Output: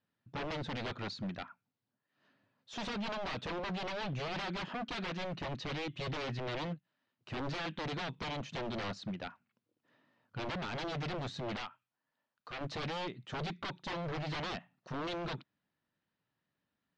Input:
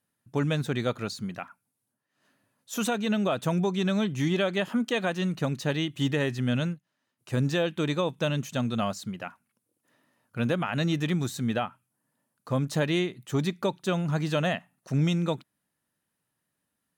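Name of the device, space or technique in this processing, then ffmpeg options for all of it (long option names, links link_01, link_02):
synthesiser wavefolder: -filter_complex "[0:a]aeval=exprs='0.0316*(abs(mod(val(0)/0.0316+3,4)-2)-1)':channel_layout=same,lowpass=frequency=4600:width=0.5412,lowpass=frequency=4600:width=1.3066,asettb=1/sr,asplit=3[link_01][link_02][link_03];[link_01]atrim=end=11.564[link_04];[link_02]atrim=start=11.56:end=12.61,asetpts=PTS-STARTPTS,afade=type=in:duration=0.004:curve=qsin,afade=type=out:start_time=1.046:duration=0.004:curve=qsin,equalizer=frequency=160:width=0.43:gain=-14[link_05];[link_03]atrim=start=12.606[link_06];[link_04][link_05]acrossfade=duration=0.004:curve1=hsin:curve2=qsin[link_07];[link_07][link_06]acrossfade=duration=0.004:curve1=qsin:curve2=hsin,volume=-3dB"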